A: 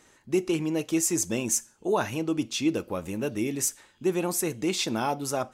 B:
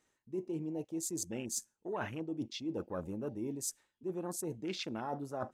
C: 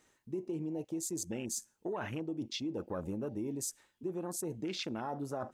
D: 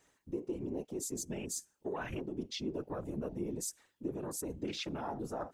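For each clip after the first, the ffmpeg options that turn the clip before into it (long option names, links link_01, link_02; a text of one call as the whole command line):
ffmpeg -i in.wav -af "areverse,acompressor=threshold=-34dB:ratio=6,areverse,afwtdn=0.00631,volume=-1.5dB" out.wav
ffmpeg -i in.wav -filter_complex "[0:a]asplit=2[link_01][link_02];[link_02]alimiter=level_in=8dB:limit=-24dB:level=0:latency=1:release=53,volume=-8dB,volume=-2dB[link_03];[link_01][link_03]amix=inputs=2:normalize=0,acompressor=threshold=-37dB:ratio=6,volume=2.5dB" out.wav
ffmpeg -i in.wav -af "afftfilt=real='hypot(re,im)*cos(2*PI*random(0))':imag='hypot(re,im)*sin(2*PI*random(1))':win_size=512:overlap=0.75,volume=5dB" out.wav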